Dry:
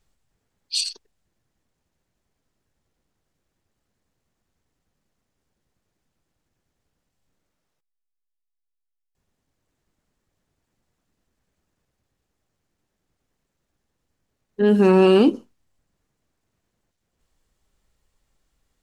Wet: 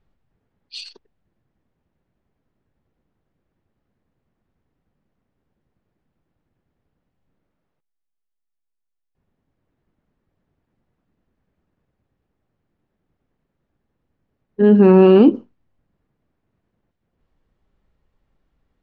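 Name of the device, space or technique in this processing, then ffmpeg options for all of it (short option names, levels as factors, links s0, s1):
phone in a pocket: -af "lowpass=3400,equalizer=f=190:t=o:w=2.4:g=4,highshelf=f=2500:g=-8,volume=1.26"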